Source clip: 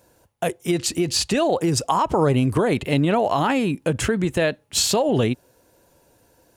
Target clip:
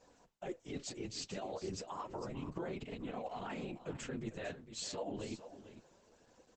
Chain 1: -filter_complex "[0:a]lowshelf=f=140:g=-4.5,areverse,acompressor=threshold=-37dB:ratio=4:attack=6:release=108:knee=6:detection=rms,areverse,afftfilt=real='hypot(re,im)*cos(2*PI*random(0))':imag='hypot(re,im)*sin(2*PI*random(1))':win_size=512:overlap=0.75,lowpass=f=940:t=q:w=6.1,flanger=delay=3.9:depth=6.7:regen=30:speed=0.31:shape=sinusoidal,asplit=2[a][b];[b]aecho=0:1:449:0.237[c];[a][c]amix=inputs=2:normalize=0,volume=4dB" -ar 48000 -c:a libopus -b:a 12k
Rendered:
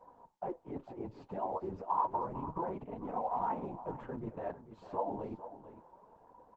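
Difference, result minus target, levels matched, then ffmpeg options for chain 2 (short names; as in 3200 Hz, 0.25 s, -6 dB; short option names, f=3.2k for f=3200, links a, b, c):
1000 Hz band +7.5 dB
-filter_complex "[0:a]lowshelf=f=140:g=-4.5,areverse,acompressor=threshold=-37dB:ratio=4:attack=6:release=108:knee=6:detection=rms,areverse,afftfilt=real='hypot(re,im)*cos(2*PI*random(0))':imag='hypot(re,im)*sin(2*PI*random(1))':win_size=512:overlap=0.75,flanger=delay=3.9:depth=6.7:regen=30:speed=0.31:shape=sinusoidal,asplit=2[a][b];[b]aecho=0:1:449:0.237[c];[a][c]amix=inputs=2:normalize=0,volume=4dB" -ar 48000 -c:a libopus -b:a 12k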